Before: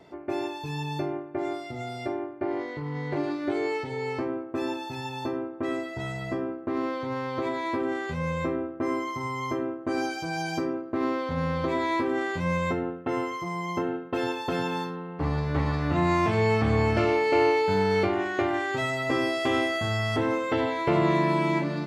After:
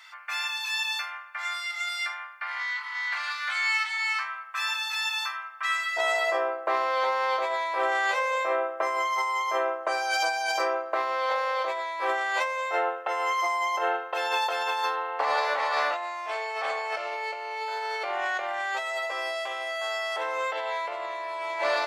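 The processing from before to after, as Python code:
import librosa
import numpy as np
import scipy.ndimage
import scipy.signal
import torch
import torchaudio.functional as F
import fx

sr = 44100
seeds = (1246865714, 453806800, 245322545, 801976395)

y = fx.steep_highpass(x, sr, hz=fx.steps((0.0, 1200.0), (5.96, 560.0)), slope=36)
y = fx.over_compress(y, sr, threshold_db=-37.0, ratio=-1.0)
y = y * 10.0 ** (8.5 / 20.0)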